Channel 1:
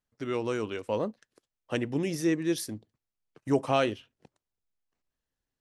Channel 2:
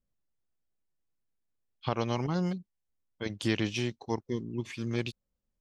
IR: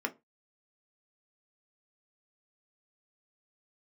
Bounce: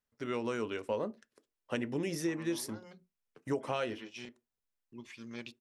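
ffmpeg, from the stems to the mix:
-filter_complex "[0:a]volume=-4.5dB,asplit=3[link_01][link_02][link_03];[link_02]volume=-10dB[link_04];[1:a]lowshelf=frequency=310:gain=-9,adelay=400,volume=-10.5dB,asplit=3[link_05][link_06][link_07];[link_05]atrim=end=4.29,asetpts=PTS-STARTPTS,afade=type=out:start_time=4.286:duration=0.004:curve=hsin[link_08];[link_06]atrim=start=4.29:end=4.92,asetpts=PTS-STARTPTS,volume=0[link_09];[link_07]atrim=start=4.92,asetpts=PTS-STARTPTS,afade=type=in:duration=0.004:curve=hsin[link_10];[link_08][link_09][link_10]concat=n=3:v=0:a=1,asplit=2[link_11][link_12];[link_12]volume=-9.5dB[link_13];[link_03]apad=whole_len=264766[link_14];[link_11][link_14]sidechaincompress=threshold=-57dB:ratio=8:attack=9:release=194[link_15];[2:a]atrim=start_sample=2205[link_16];[link_04][link_13]amix=inputs=2:normalize=0[link_17];[link_17][link_16]afir=irnorm=-1:irlink=0[link_18];[link_01][link_15][link_18]amix=inputs=3:normalize=0,acompressor=threshold=-29dB:ratio=10"

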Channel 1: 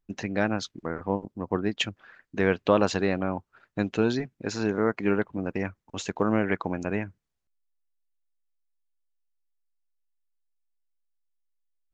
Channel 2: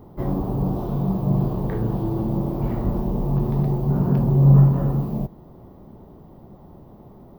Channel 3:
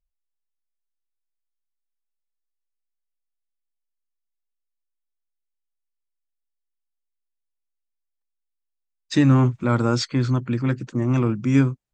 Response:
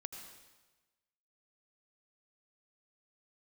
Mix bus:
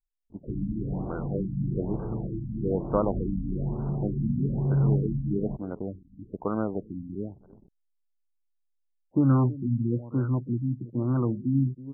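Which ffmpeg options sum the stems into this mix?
-filter_complex "[0:a]adelay=250,volume=-4dB,asplit=2[link_01][link_02];[link_02]volume=-21.5dB[link_03];[1:a]acontrast=78,adelay=300,volume=-15dB[link_04];[2:a]volume=-5dB,asplit=2[link_05][link_06];[link_06]volume=-17dB[link_07];[link_03][link_07]amix=inputs=2:normalize=0,aecho=0:1:325:1[link_08];[link_01][link_04][link_05][link_08]amix=inputs=4:normalize=0,anlmdn=0.0158,adynamicsmooth=sensitivity=2:basefreq=7200,afftfilt=real='re*lt(b*sr/1024,290*pow(1600/290,0.5+0.5*sin(2*PI*1.1*pts/sr)))':imag='im*lt(b*sr/1024,290*pow(1600/290,0.5+0.5*sin(2*PI*1.1*pts/sr)))':win_size=1024:overlap=0.75"

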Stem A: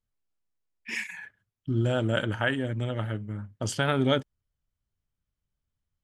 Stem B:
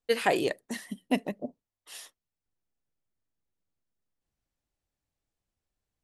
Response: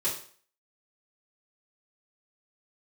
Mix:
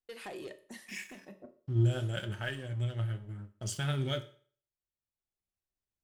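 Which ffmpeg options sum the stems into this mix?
-filter_complex "[0:a]equalizer=frequency=250:width_type=o:width=1:gain=-11,equalizer=frequency=500:width_type=o:width=1:gain=-7,equalizer=frequency=1000:width_type=o:width=1:gain=-11,equalizer=frequency=2000:width_type=o:width=1:gain=-5,equalizer=frequency=4000:width_type=o:width=1:gain=-3,aeval=exprs='sgn(val(0))*max(abs(val(0))-0.00299,0)':channel_layout=same,flanger=delay=4.5:depth=4.2:regen=63:speed=0.84:shape=sinusoidal,volume=1dB,asplit=3[link_01][link_02][link_03];[link_02]volume=-12.5dB[link_04];[1:a]acompressor=threshold=-28dB:ratio=6,asoftclip=type=tanh:threshold=-27.5dB,volume=-11dB,asplit=2[link_05][link_06];[link_06]volume=-13.5dB[link_07];[link_03]apad=whole_len=266155[link_08];[link_05][link_08]sidechaincompress=threshold=-47dB:ratio=8:attack=32:release=1380[link_09];[2:a]atrim=start_sample=2205[link_10];[link_04][link_07]amix=inputs=2:normalize=0[link_11];[link_11][link_10]afir=irnorm=-1:irlink=0[link_12];[link_01][link_09][link_12]amix=inputs=3:normalize=0"

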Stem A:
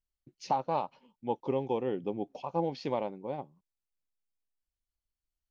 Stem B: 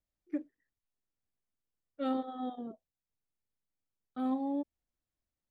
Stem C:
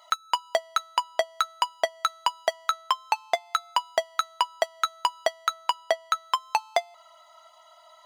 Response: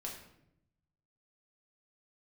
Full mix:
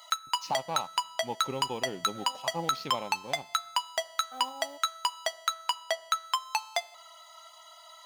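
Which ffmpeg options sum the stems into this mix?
-filter_complex "[0:a]aeval=exprs='sgn(val(0))*max(abs(val(0))-0.00141,0)':channel_layout=same,volume=-0.5dB,asplit=3[link_01][link_02][link_03];[link_02]volume=-24dB[link_04];[1:a]dynaudnorm=framelen=110:gausssize=17:maxgain=12dB,acrusher=bits=7:mode=log:mix=0:aa=0.000001,highpass=frequency=630:width_type=q:width=1.5,adelay=150,volume=-13.5dB[link_05];[2:a]volume=0.5dB,asplit=2[link_06][link_07];[link_07]volume=-19dB[link_08];[link_03]apad=whole_len=249584[link_09];[link_05][link_09]sidechaincompress=threshold=-36dB:ratio=8:attack=16:release=1080[link_10];[link_01][link_06]amix=inputs=2:normalize=0,highshelf=frequency=2500:gain=8.5,alimiter=limit=-12.5dB:level=0:latency=1:release=40,volume=0dB[link_11];[3:a]atrim=start_sample=2205[link_12];[link_04][link_08]amix=inputs=2:normalize=0[link_13];[link_13][link_12]afir=irnorm=-1:irlink=0[link_14];[link_10][link_11][link_14]amix=inputs=3:normalize=0,equalizer=frequency=400:width=0.77:gain=-6.5"

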